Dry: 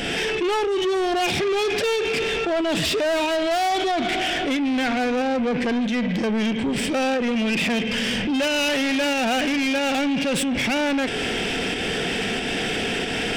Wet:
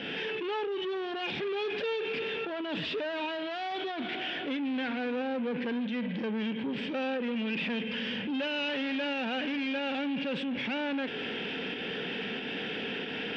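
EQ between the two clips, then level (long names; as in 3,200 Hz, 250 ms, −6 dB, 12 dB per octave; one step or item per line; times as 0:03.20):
loudspeaker in its box 190–3,400 Hz, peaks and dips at 350 Hz −5 dB, 690 Hz −9 dB, 1,200 Hz −5 dB, 2,100 Hz −5 dB
−7.5 dB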